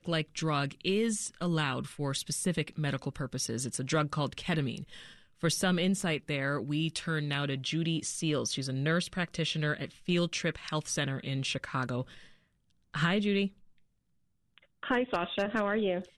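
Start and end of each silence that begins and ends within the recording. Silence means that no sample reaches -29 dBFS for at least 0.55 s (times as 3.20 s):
4.77–5.43 s
12.02–12.95 s
13.46–14.83 s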